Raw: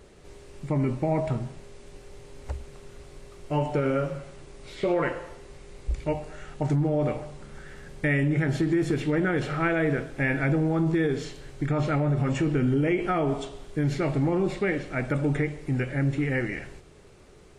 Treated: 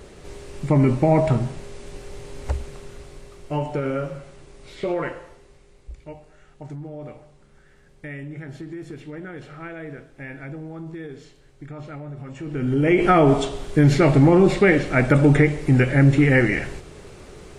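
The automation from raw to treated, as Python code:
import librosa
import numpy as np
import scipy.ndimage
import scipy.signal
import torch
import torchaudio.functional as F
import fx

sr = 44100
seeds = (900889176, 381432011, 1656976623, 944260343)

y = fx.gain(x, sr, db=fx.line((2.56, 8.5), (3.68, 0.0), (4.94, 0.0), (6.0, -11.0), (12.36, -11.0), (12.61, -1.0), (13.04, 10.5)))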